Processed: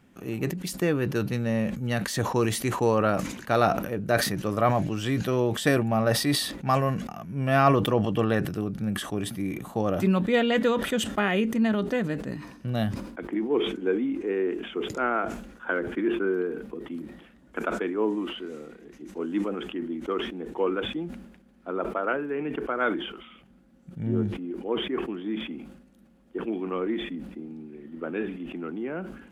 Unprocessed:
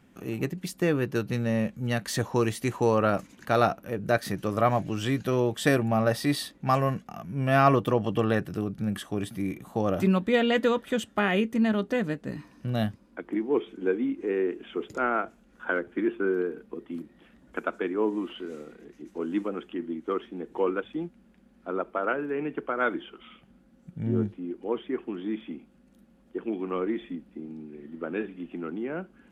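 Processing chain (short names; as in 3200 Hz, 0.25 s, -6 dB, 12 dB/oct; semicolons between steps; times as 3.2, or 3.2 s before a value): sustainer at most 66 dB/s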